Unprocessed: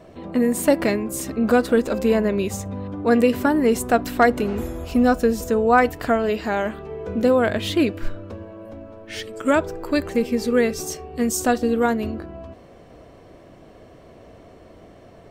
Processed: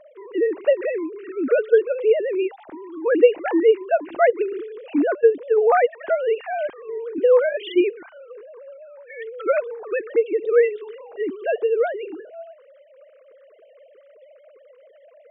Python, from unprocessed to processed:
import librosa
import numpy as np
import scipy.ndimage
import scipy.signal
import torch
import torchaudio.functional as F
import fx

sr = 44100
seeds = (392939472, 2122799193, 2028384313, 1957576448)

y = fx.sine_speech(x, sr)
y = fx.dynamic_eq(y, sr, hz=1400.0, q=1.9, threshold_db=-36.0, ratio=4.0, max_db=-4)